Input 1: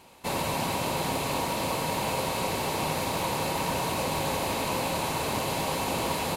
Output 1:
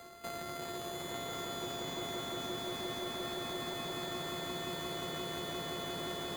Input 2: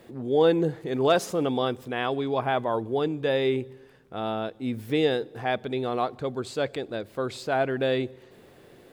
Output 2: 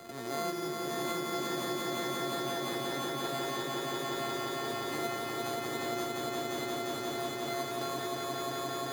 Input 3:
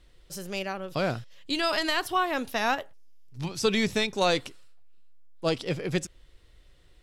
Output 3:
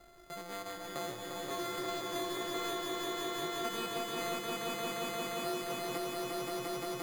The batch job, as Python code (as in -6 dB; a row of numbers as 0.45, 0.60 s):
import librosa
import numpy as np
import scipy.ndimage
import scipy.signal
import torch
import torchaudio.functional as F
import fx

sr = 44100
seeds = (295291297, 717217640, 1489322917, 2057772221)

y = np.r_[np.sort(x[:len(x) // 64 * 64].reshape(-1, 64), axis=1).ravel(), x[len(x) // 64 * 64:]]
y = fx.low_shelf(y, sr, hz=230.0, db=-8.5)
y = fx.comb_fb(y, sr, f0_hz=360.0, decay_s=0.46, harmonics='odd', damping=0.0, mix_pct=90)
y = np.repeat(scipy.signal.resample_poly(y, 1, 8), 8)[:len(y)]
y = fx.echo_swell(y, sr, ms=175, loudest=5, wet_db=-3)
y = fx.band_squash(y, sr, depth_pct=70)
y = F.gain(torch.from_numpy(y), 5.5).numpy()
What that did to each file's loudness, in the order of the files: -10.5, -8.0, -9.0 LU